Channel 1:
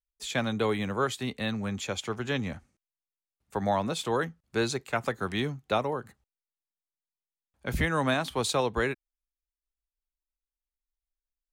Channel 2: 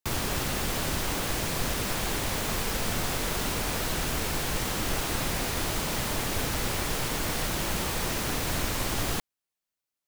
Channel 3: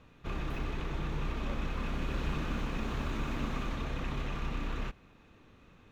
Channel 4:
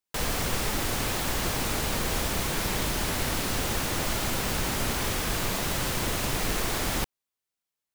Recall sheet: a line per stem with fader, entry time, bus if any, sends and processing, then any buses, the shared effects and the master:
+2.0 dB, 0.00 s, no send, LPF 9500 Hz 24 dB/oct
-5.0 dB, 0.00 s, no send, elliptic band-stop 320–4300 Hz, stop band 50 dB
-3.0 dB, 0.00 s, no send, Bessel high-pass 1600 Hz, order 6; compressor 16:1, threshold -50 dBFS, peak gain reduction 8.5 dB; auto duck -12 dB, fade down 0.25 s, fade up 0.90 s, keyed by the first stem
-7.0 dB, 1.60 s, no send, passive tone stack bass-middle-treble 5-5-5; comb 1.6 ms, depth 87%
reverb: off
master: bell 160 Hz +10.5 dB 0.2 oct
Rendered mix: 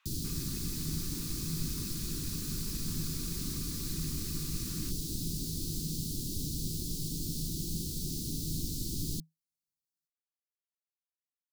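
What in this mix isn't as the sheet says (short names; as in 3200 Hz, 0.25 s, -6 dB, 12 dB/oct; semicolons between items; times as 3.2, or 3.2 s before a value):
stem 1: muted; stem 4: muted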